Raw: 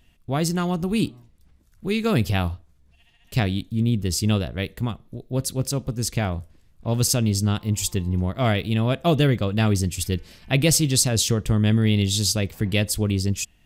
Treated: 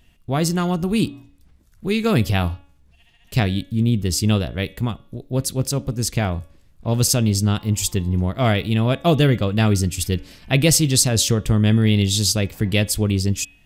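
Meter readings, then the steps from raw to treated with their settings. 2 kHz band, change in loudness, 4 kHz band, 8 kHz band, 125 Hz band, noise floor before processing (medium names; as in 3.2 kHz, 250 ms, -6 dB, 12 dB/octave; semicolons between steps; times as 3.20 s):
+3.0 dB, +3.0 dB, +3.0 dB, +3.0 dB, +3.0 dB, -59 dBFS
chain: de-hum 282 Hz, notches 13; trim +3 dB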